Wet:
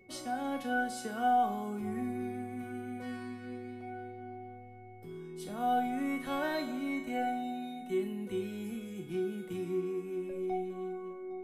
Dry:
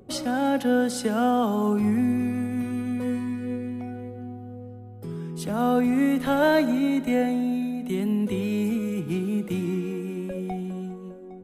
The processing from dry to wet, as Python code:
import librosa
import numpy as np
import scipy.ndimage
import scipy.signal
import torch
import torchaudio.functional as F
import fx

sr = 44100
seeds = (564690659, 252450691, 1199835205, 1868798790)

y = x + 10.0 ** (-51.0 / 20.0) * np.sin(2.0 * np.pi * 2200.0 * np.arange(len(x)) / sr)
y = fx.comb_fb(y, sr, f0_hz=370.0, decay_s=0.42, harmonics='all', damping=0.0, mix_pct=90)
y = fx.room_flutter(y, sr, wall_m=6.8, rt60_s=0.21)
y = F.gain(torch.from_numpy(y), 3.5).numpy()